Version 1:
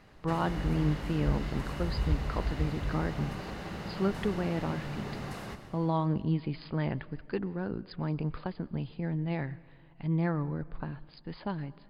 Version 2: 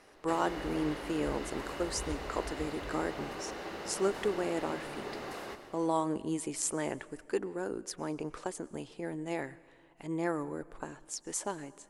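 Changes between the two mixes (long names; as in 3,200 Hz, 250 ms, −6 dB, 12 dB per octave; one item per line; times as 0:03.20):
speech: remove linear-phase brick-wall low-pass 5,000 Hz
master: add low shelf with overshoot 240 Hz −12 dB, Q 1.5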